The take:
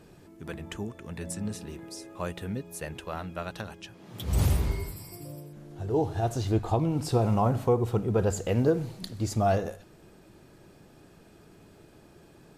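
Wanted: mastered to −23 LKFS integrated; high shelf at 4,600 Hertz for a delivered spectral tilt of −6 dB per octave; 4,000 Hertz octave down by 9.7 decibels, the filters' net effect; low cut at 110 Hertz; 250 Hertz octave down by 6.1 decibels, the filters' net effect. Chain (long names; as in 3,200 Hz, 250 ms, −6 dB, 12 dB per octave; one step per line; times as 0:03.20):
high-pass filter 110 Hz
parametric band 250 Hz −8.5 dB
parametric band 4,000 Hz −8.5 dB
high-shelf EQ 4,600 Hz −8.5 dB
level +10 dB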